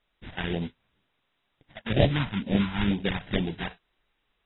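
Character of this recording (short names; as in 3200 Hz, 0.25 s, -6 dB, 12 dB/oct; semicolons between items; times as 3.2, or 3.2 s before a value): aliases and images of a low sample rate 1200 Hz, jitter 20%; phasing stages 2, 2.1 Hz, lowest notch 360–1300 Hz; a quantiser's noise floor 12-bit, dither triangular; AAC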